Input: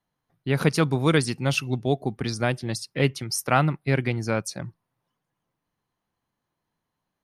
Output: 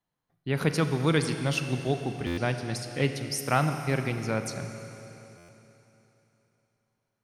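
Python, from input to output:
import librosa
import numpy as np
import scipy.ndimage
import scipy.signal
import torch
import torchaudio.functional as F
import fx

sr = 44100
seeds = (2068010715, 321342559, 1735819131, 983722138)

y = fx.rev_schroeder(x, sr, rt60_s=3.4, comb_ms=32, drr_db=7.0)
y = fx.buffer_glitch(y, sr, at_s=(2.26, 5.37), block=512, repeats=9)
y = F.gain(torch.from_numpy(y), -4.5).numpy()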